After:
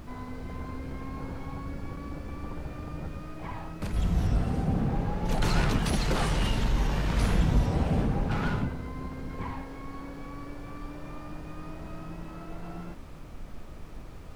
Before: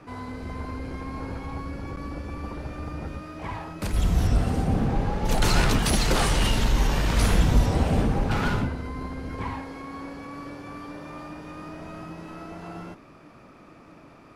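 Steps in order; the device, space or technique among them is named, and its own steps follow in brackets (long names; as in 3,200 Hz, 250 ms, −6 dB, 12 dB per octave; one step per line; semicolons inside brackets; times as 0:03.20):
car interior (parametric band 160 Hz +4.5 dB 0.57 octaves; high-shelf EQ 4,600 Hz −7 dB; brown noise bed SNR 11 dB)
level −5 dB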